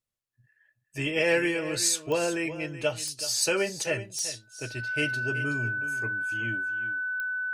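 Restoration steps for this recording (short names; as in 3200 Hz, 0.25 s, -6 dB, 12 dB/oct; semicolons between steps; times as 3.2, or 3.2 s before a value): de-click; notch 1500 Hz, Q 30; inverse comb 0.376 s -13.5 dB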